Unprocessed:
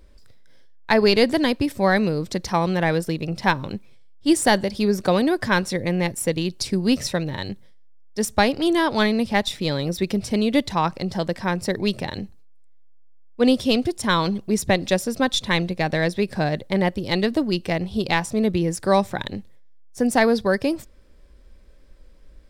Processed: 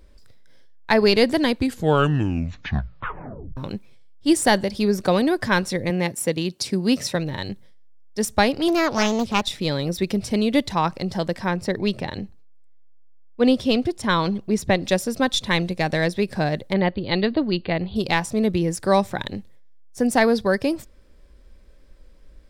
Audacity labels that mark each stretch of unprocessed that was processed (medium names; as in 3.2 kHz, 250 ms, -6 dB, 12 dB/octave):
1.460000	1.460000	tape stop 2.11 s
5.900000	7.150000	high-pass 130 Hz
8.680000	9.590000	loudspeaker Doppler distortion depth 0.48 ms
11.480000	14.850000	peaking EQ 12 kHz -8 dB 1.7 oct
15.650000	16.060000	peaking EQ 8.1 kHz +4.5 dB 1.2 oct
16.730000	17.960000	brick-wall FIR low-pass 4.8 kHz